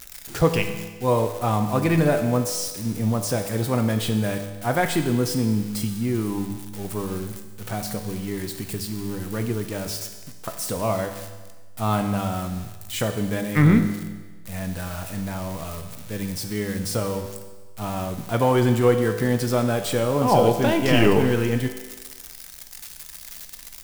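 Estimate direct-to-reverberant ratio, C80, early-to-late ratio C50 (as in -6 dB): 5.5 dB, 10.0 dB, 8.5 dB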